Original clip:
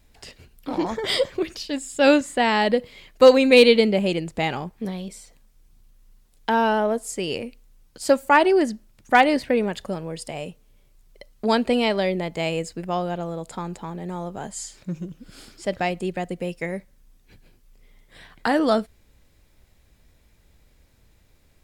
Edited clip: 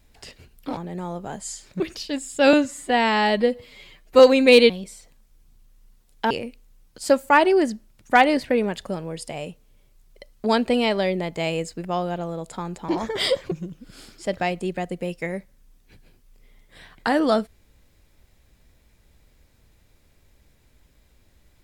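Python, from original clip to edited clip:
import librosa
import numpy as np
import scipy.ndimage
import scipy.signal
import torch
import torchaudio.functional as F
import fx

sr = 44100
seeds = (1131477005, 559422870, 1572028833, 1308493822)

y = fx.edit(x, sr, fx.swap(start_s=0.77, length_s=0.63, other_s=13.88, other_length_s=1.03),
    fx.stretch_span(start_s=2.13, length_s=1.11, factor=1.5),
    fx.cut(start_s=3.74, length_s=1.2),
    fx.cut(start_s=6.55, length_s=0.75), tone=tone)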